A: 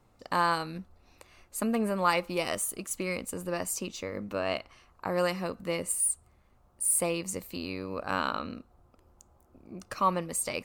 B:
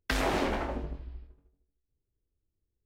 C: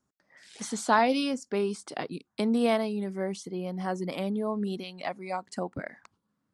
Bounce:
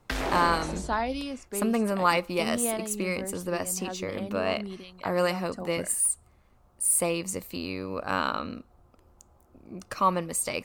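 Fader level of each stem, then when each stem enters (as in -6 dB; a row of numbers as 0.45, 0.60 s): +2.5, -1.5, -6.0 dB; 0.00, 0.00, 0.00 s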